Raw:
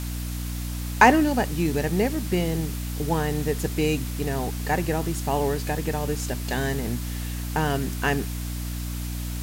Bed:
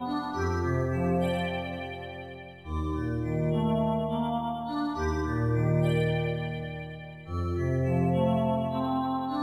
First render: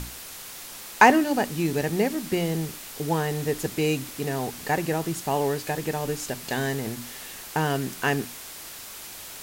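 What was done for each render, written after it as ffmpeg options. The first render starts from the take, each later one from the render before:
-af "bandreject=f=60:t=h:w=6,bandreject=f=120:t=h:w=6,bandreject=f=180:t=h:w=6,bandreject=f=240:t=h:w=6,bandreject=f=300:t=h:w=6"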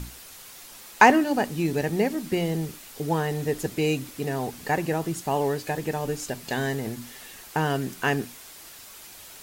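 -af "afftdn=nr=6:nf=-41"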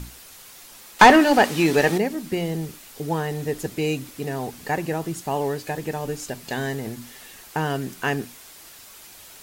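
-filter_complex "[0:a]asettb=1/sr,asplit=3[a][b][c];[a]atrim=end=0.994[d];[b]atrim=start=0.99:end=1.98,asetpts=PTS-STARTPTS,afade=t=in:d=0.004:c=qsin,afade=t=out:st=0.986:d=0.004:c=qsin,asplit=2[e][f];[f]highpass=f=720:p=1,volume=20dB,asoftclip=type=tanh:threshold=-2.5dB[g];[e][g]amix=inputs=2:normalize=0,lowpass=f=4.4k:p=1,volume=-6dB[h];[c]atrim=start=1.976[i];[d][h]acrossfade=d=0.004:c1=hsin:c2=qsin[j];[j][i]acrossfade=d=0.004:c1=qsin:c2=hsin"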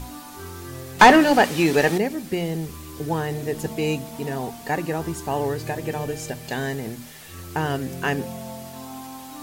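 -filter_complex "[1:a]volume=-9dB[a];[0:a][a]amix=inputs=2:normalize=0"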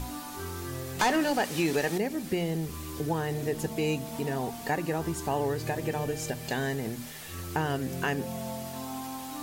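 -filter_complex "[0:a]acrossover=split=4600[a][b];[a]alimiter=limit=-13.5dB:level=0:latency=1:release=357[c];[c][b]amix=inputs=2:normalize=0,acompressor=threshold=-32dB:ratio=1.5"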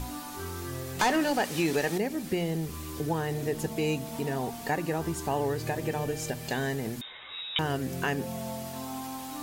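-filter_complex "[0:a]asettb=1/sr,asplit=3[a][b][c];[a]atrim=end=7.014[d];[b]atrim=start=7.01:end=7.59,asetpts=PTS-STARTPTS,afade=t=in:d=0.004:c=qsin,afade=t=out:st=0.576:d=0.004:c=qsin,lowpass=f=3.3k:t=q:w=0.5098,lowpass=f=3.3k:t=q:w=0.6013,lowpass=f=3.3k:t=q:w=0.9,lowpass=f=3.3k:t=q:w=2.563,afreqshift=-3900[e];[c]atrim=start=7.586[f];[d][e]acrossfade=d=0.004:c1=hsin:c2=qsin[g];[g][f]acrossfade=d=0.004:c1=qsin:c2=hsin"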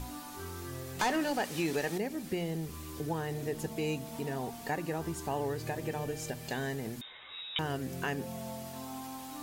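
-af "volume=-5dB"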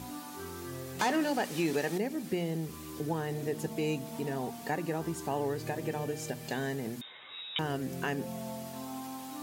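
-af "highpass=150,lowshelf=f=360:g=4.5"

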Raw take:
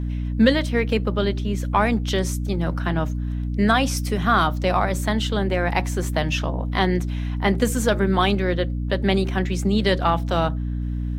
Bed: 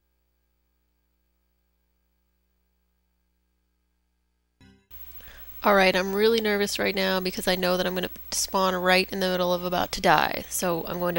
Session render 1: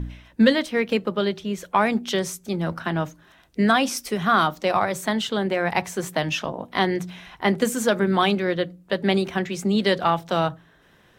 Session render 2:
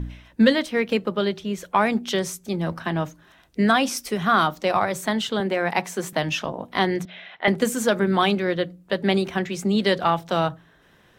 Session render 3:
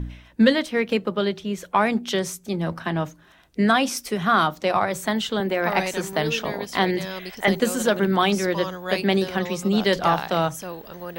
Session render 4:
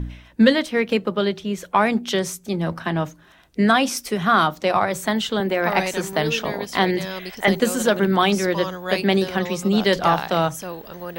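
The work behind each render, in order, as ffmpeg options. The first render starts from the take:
-af "bandreject=f=60:t=h:w=4,bandreject=f=120:t=h:w=4,bandreject=f=180:t=h:w=4,bandreject=f=240:t=h:w=4,bandreject=f=300:t=h:w=4"
-filter_complex "[0:a]asettb=1/sr,asplit=3[a][b][c];[a]atrim=end=2.444[d];[b]atrim=start=2.44:end=3.02,asetpts=PTS-STARTPTS,afade=t=in:d=0.004:c=qsin,afade=t=out:st=0.576:d=0.004:c=qsin,bandreject=f=1.4k:w=9.3[e];[c]atrim=start=3.016[f];[d][e]acrossfade=d=0.004:c1=hsin:c2=qsin[g];[g][f]acrossfade=d=0.004:c1=qsin:c2=hsin,asettb=1/sr,asplit=3[h][i][j];[h]atrim=end=5.404[k];[i]atrim=start=5.4:end=6.13,asetpts=PTS-STARTPTS,afade=t=in:d=0.004:c=qsin,afade=t=out:st=0.726:d=0.004:c=qsin,highpass=f=160:w=0.5412,highpass=f=160:w=1.3066[l];[j]atrim=start=6.126[m];[k][l]acrossfade=d=0.004:c1=hsin:c2=qsin[n];[n][m]acrossfade=d=0.004:c1=qsin:c2=hsin,asettb=1/sr,asplit=3[o][p][q];[o]atrim=end=7.054[r];[p]atrim=start=7.05:end=7.48,asetpts=PTS-STARTPTS,afade=t=in:d=0.004:c=qsin,afade=t=out:st=0.426:d=0.004:c=qsin,highpass=310,equalizer=f=320:t=q:w=4:g=-9,equalizer=f=610:t=q:w=4:g=7,equalizer=f=1k:t=q:w=4:g=-9,equalizer=f=2k:t=q:w=4:g=5,equalizer=f=3.5k:t=q:w=4:g=5,lowpass=f=3.7k:w=0.5412,lowpass=f=3.7k:w=1.3066[s];[q]atrim=start=7.476[t];[r][s]acrossfade=d=0.004:c1=hsin:c2=qsin[u];[u][t]acrossfade=d=0.004:c1=qsin:c2=hsin"
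-filter_complex "[1:a]volume=-8.5dB[a];[0:a][a]amix=inputs=2:normalize=0"
-af "volume=2dB"

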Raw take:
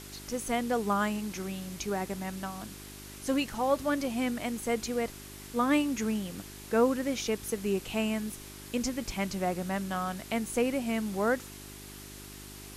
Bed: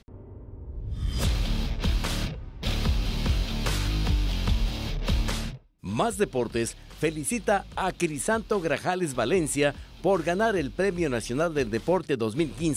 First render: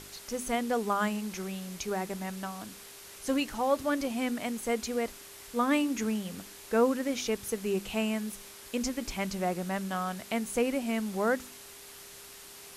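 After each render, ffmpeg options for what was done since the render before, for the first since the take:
-af "bandreject=f=50:t=h:w=4,bandreject=f=100:t=h:w=4,bandreject=f=150:t=h:w=4,bandreject=f=200:t=h:w=4,bandreject=f=250:t=h:w=4,bandreject=f=300:t=h:w=4,bandreject=f=350:t=h:w=4"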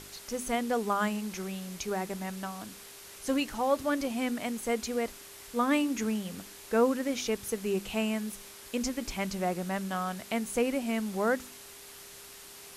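-af anull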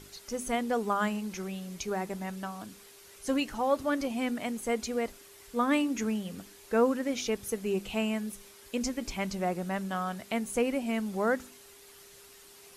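-af "afftdn=nr=7:nf=-49"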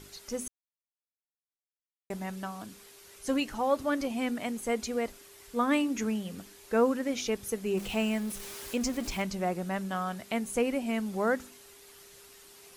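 -filter_complex "[0:a]asettb=1/sr,asplit=3[a][b][c];[a]atrim=end=7.774[d];[b]atrim=start=7.77:end=9.22,asetpts=PTS-STARTPTS,afade=t=in:d=0.004:c=qsin,afade=t=out:st=1.446:d=0.004:c=qsin,aeval=exprs='val(0)+0.5*0.0112*sgn(val(0))':c=same[e];[c]atrim=start=9.216[f];[d][e]acrossfade=d=0.004:c1=hsin:c2=qsin[g];[g][f]acrossfade=d=0.004:c1=qsin:c2=hsin,asplit=3[h][i][j];[h]atrim=end=0.48,asetpts=PTS-STARTPTS,afade=t=out:st=0.476:d=0.004:c=hsin[k];[i]atrim=start=0.48:end=2.1,asetpts=PTS-STARTPTS,volume=0[l];[j]atrim=start=2.1,asetpts=PTS-STARTPTS,afade=t=in:d=0.004:c=hsin[m];[k][l][m]concat=n=3:v=0:a=1"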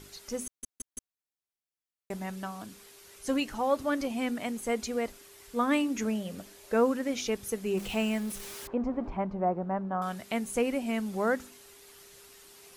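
-filter_complex "[0:a]asettb=1/sr,asplit=3[a][b][c];[a]atrim=end=6.054[d];[b]atrim=start=6.05:end=6.74,asetpts=PTS-STARTPTS,afade=t=in:d=0.004:c=qsin,afade=t=out:st=0.686:d=0.004:c=qsin,equalizer=f=600:w=4:g=10[e];[c]atrim=start=6.736[f];[d][e]acrossfade=d=0.004:c1=hsin:c2=qsin[g];[g][f]acrossfade=d=0.004:c1=qsin:c2=hsin,asettb=1/sr,asplit=3[h][i][j];[h]atrim=end=8.674[k];[i]atrim=start=8.67:end=10.02,asetpts=PTS-STARTPTS,afade=t=in:d=0.004:c=qsin,afade=t=out:st=1.346:d=0.004:c=qsin,lowpass=f=940:t=q:w=1.6[l];[j]atrim=start=10.016[m];[k][l]acrossfade=d=0.004:c1=hsin:c2=qsin[n];[n][m]acrossfade=d=0.004:c1=qsin:c2=hsin,asplit=5[o][p][q][r][s];[o]atrim=end=0.632[t];[p]atrim=start=0.458:end=0.632[u];[q]atrim=start=0.458:end=0.632[v];[r]atrim=start=0.458:end=0.632[w];[s]atrim=start=1.138[x];[t][u]acrossfade=d=0.004:c1=hsin:c2=hsin[y];[y][v]acrossfade=d=0.004:c1=hsin:c2=hsin[z];[z][w]acrossfade=d=0.004:c1=hsin:c2=hsin[aa];[aa][x]acrossfade=d=0.004:c1=hsin:c2=hsin"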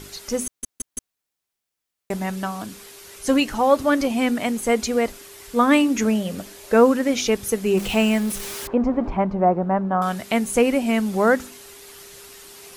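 -af "volume=10.5dB"

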